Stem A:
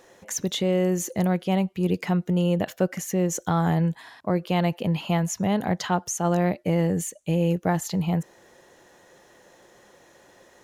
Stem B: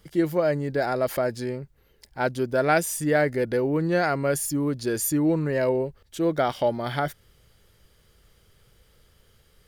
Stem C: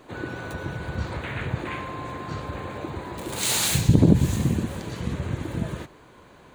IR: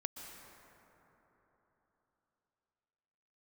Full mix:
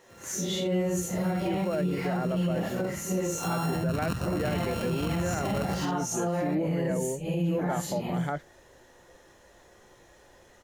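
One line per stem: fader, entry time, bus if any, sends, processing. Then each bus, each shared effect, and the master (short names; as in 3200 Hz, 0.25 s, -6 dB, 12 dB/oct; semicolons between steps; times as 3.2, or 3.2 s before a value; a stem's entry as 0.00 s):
-2.5 dB, 0.00 s, no send, phase scrambler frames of 0.2 s; notches 50/100/150/200 Hz
-5.5 dB, 1.30 s, no send, Bessel low-pass 2000 Hz
0.85 s -19.5 dB -> 1.39 s -11.5 dB -> 4.25 s -11.5 dB -> 4.6 s -0.5 dB, 0.00 s, no send, sample sorter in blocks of 32 samples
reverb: off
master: limiter -20.5 dBFS, peak gain reduction 11 dB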